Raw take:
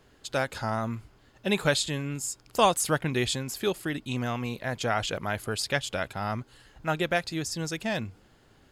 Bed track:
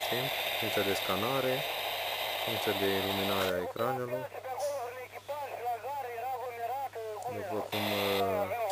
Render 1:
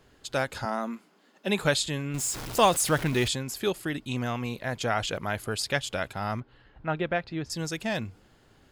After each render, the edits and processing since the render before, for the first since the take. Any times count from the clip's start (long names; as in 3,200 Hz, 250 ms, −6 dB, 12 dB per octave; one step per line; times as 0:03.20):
0:00.65–0:01.59: Chebyshev high-pass filter 170 Hz, order 6
0:02.14–0:03.28: converter with a step at zero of −31.5 dBFS
0:06.40–0:07.50: high-frequency loss of the air 330 metres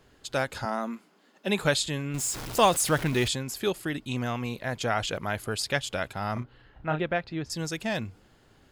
0:06.33–0:07.01: double-tracking delay 33 ms −6 dB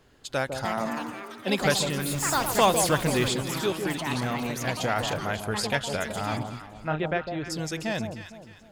delay that swaps between a low-pass and a high-pass 153 ms, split 940 Hz, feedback 59%, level −6 dB
delay with pitch and tempo change per echo 387 ms, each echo +5 semitones, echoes 3, each echo −6 dB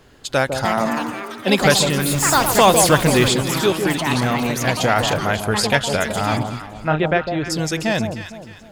level +9.5 dB
brickwall limiter −1 dBFS, peak gain reduction 3 dB